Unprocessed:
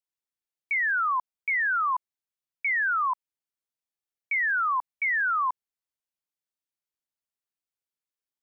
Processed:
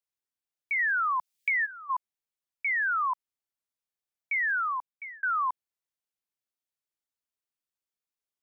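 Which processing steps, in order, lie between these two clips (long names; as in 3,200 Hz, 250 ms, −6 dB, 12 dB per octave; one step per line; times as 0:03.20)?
0:01.36–0:01.90: gain on a spectral selection 630–1,700 Hz −17 dB
0:04.53–0:05.23: fade out
0:00.79–0:01.71: multiband upward and downward compressor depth 100%
level −2 dB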